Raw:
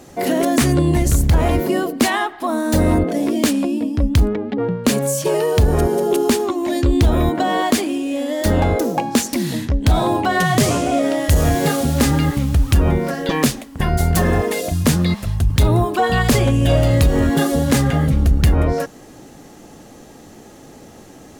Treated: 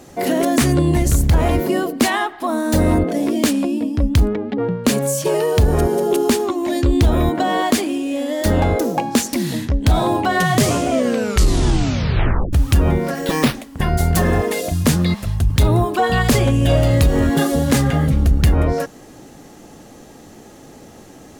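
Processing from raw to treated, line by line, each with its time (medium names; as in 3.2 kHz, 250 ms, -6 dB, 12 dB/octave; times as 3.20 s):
10.86 s: tape stop 1.67 s
13.15–13.55 s: careless resampling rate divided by 6×, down none, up hold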